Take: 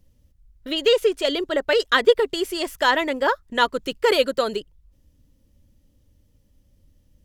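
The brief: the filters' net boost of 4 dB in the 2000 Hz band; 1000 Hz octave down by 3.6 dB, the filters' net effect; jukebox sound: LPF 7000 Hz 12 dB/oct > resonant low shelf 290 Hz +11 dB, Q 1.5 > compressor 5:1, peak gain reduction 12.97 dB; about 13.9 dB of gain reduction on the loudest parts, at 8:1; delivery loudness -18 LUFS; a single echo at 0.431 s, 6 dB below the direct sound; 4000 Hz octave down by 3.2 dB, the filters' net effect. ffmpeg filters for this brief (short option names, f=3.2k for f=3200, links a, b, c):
-af "equalizer=f=1k:t=o:g=-5.5,equalizer=f=2k:t=o:g=9,equalizer=f=4k:t=o:g=-8.5,acompressor=threshold=-25dB:ratio=8,lowpass=7k,lowshelf=f=290:t=q:w=1.5:g=11,aecho=1:1:431:0.501,acompressor=threshold=-34dB:ratio=5,volume=19.5dB"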